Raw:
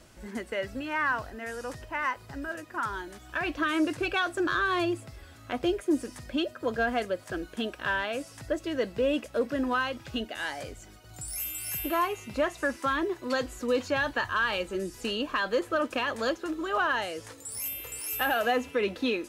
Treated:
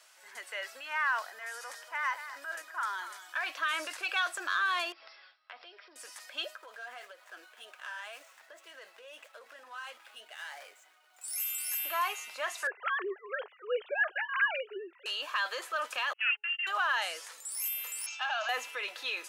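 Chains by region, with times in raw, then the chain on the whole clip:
1.17–3.50 s: band-stop 2.7 kHz, Q 10 + delay 236 ms -15 dB
4.92–5.96 s: gate with hold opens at -38 dBFS, closes at -44 dBFS + brick-wall FIR low-pass 5.7 kHz + compression 3:1, threshold -41 dBFS
6.56–11.24 s: median filter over 9 samples + compression, threshold -31 dBFS + flange 1.8 Hz, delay 3.8 ms, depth 5.7 ms, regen -52%
12.67–15.06 s: formants replaced by sine waves + resonant high-pass 390 Hz, resonance Q 4.7
16.13–16.67 s: gate -35 dBFS, range -42 dB + frequency inversion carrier 3.1 kHz + de-hum 420 Hz, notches 2
18.06–18.49 s: Chebyshev band-pass 630–6700 Hz, order 5 + peaking EQ 1.9 kHz -13 dB 0.23 oct
whole clip: Bessel high-pass 1.1 kHz, order 4; transient shaper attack -1 dB, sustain +5 dB

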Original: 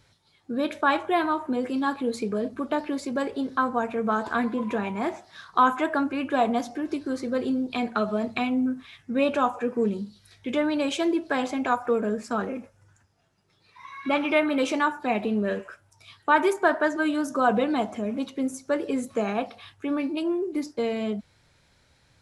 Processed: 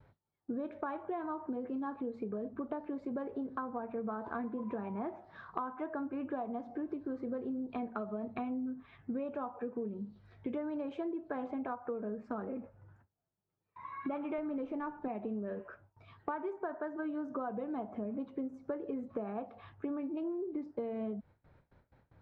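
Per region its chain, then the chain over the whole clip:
14.38–15.08 s: bass shelf 320 Hz +8.5 dB + sliding maximum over 3 samples
whole clip: low-pass 1.1 kHz 12 dB/octave; gate with hold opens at -55 dBFS; compression 12:1, threshold -36 dBFS; trim +1 dB

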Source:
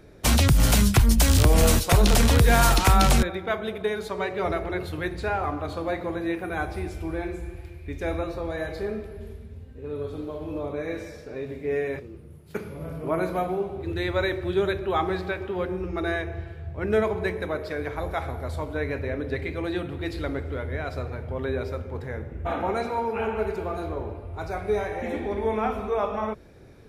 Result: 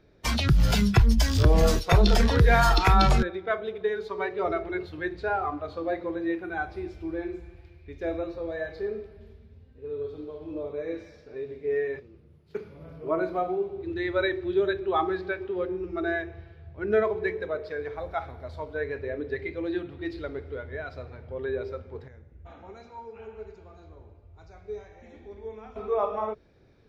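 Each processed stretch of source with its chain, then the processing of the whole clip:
22.08–25.76 s: four-pole ladder low-pass 7.3 kHz, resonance 70% + bass shelf 110 Hz +11 dB
whole clip: resonant high shelf 6.6 kHz -11.5 dB, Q 1.5; spectral noise reduction 10 dB

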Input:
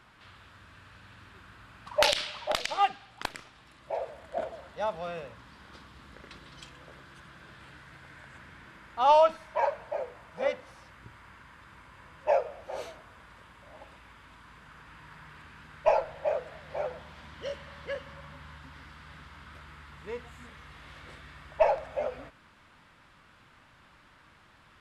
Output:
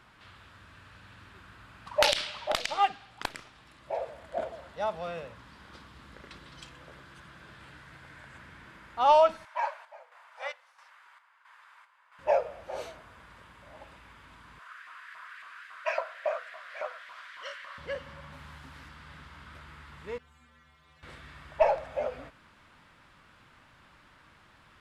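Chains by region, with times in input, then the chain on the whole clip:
9.45–12.19 s: high-pass 810 Hz 24 dB/octave + square tremolo 1.5 Hz, depth 60%, duty 60% + tape noise reduction on one side only decoder only
14.59–17.78 s: peaking EQ 640 Hz +4 dB 0.41 oct + LFO high-pass saw up 3.6 Hz 910–1900 Hz + Butterworth band-stop 860 Hz, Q 4.8
18.32–18.89 s: treble shelf 8.4 kHz +10.5 dB + loudspeaker Doppler distortion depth 0.35 ms
20.18–21.03 s: hum notches 60/120/180/240/300/360 Hz + inharmonic resonator 77 Hz, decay 0.62 s, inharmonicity 0.008
whole clip: none

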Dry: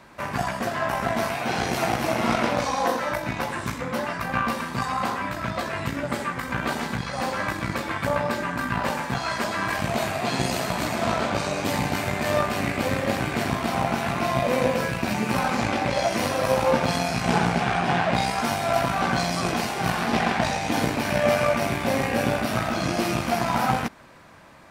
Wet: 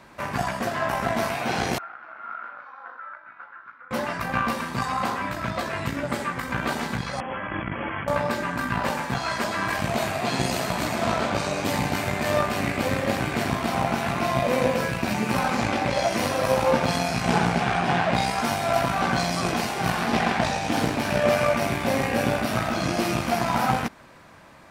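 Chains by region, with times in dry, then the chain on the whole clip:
1.78–3.91 s: band-pass filter 1.4 kHz, Q 10 + distance through air 240 m
7.20–8.08 s: brick-wall FIR low-pass 3.4 kHz + compressor with a negative ratio -31 dBFS
20.42–21.33 s: band-stop 2.1 kHz, Q 15 + loudspeaker Doppler distortion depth 0.24 ms
whole clip: none

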